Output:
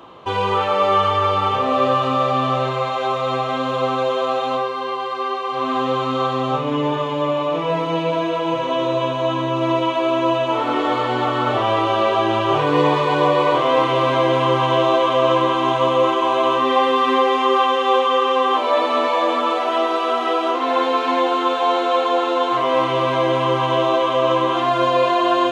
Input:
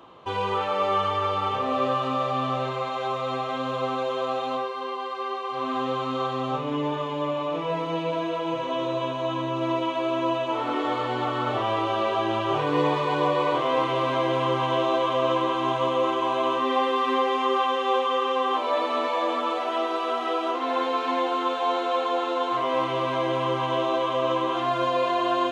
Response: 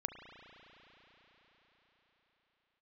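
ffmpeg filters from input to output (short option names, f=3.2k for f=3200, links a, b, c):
-filter_complex "[0:a]asplit=2[a][b];[1:a]atrim=start_sample=2205,asetrate=48510,aresample=44100,adelay=29[c];[b][c]afir=irnorm=-1:irlink=0,volume=-17dB[d];[a][d]amix=inputs=2:normalize=0,volume=7dB"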